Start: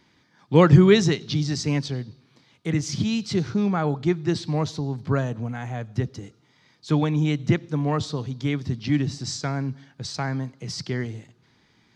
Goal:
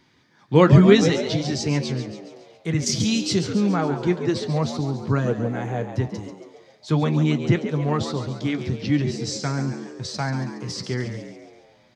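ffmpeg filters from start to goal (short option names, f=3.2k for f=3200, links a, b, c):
-filter_complex "[0:a]asettb=1/sr,asplit=3[a][b][c];[a]atrim=end=2.864[d];[b]atrim=start=2.86:end=3.39,asetpts=PTS-STARTPTS,afade=t=in:d=0.004:c=qsin,afade=t=out:st=0.526:d=0.004:c=qsin,highshelf=f=4k:g=11.5[e];[c]atrim=start=3.386[f];[d][e]acrossfade=d=0.004:c1=hsin:c2=qsin[g];[g][f]acrossfade=d=0.004:c1=qsin:c2=hsin,flanger=delay=7.4:depth=3.1:regen=-55:speed=0.41:shape=triangular,asettb=1/sr,asplit=3[h][i][j];[h]atrim=end=5.274[k];[i]atrim=start=5.27:end=5.89,asetpts=PTS-STARTPTS,afade=t=in:d=0.004:c=qsin,afade=t=out:st=0.616:d=0.004:c=qsin,equalizer=f=440:t=o:w=0.78:g=12.5[l];[j]atrim=start=5.886[m];[k][l]acrossfade=d=0.004:c1=hsin:c2=qsin[n];[n][m]acrossfade=d=0.004:c1=qsin:c2=hsin,asplit=7[o][p][q][r][s][t][u];[p]adelay=139,afreqshift=82,volume=-10dB[v];[q]adelay=278,afreqshift=164,volume=-15.5dB[w];[r]adelay=417,afreqshift=246,volume=-21dB[x];[s]adelay=556,afreqshift=328,volume=-26.5dB[y];[t]adelay=695,afreqshift=410,volume=-32.1dB[z];[u]adelay=834,afreqshift=492,volume=-37.6dB[aa];[o][v][w][x][y][z][aa]amix=inputs=7:normalize=0,volume=5dB"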